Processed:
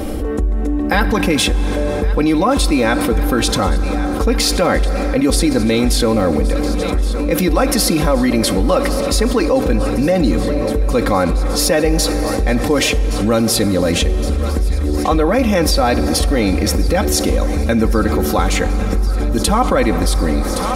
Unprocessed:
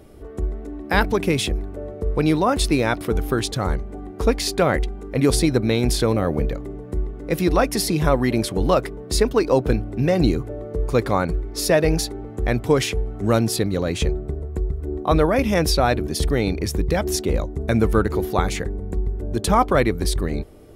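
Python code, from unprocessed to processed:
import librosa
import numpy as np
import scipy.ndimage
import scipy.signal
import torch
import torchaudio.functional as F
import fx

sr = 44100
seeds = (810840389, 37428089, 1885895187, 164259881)

p1 = x + 0.67 * np.pad(x, (int(3.8 * sr / 1000.0), 0))[:len(x)]
p2 = p1 + fx.echo_thinned(p1, sr, ms=1118, feedback_pct=84, hz=650.0, wet_db=-18.5, dry=0)
p3 = fx.rev_plate(p2, sr, seeds[0], rt60_s=4.9, hf_ratio=0.55, predelay_ms=0, drr_db=13.5)
p4 = fx.env_flatten(p3, sr, amount_pct=70)
y = p4 * librosa.db_to_amplitude(-1.5)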